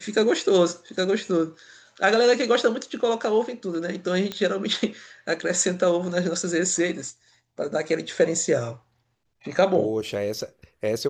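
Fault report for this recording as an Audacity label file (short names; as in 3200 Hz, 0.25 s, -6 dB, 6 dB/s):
4.320000	4.320000	pop -15 dBFS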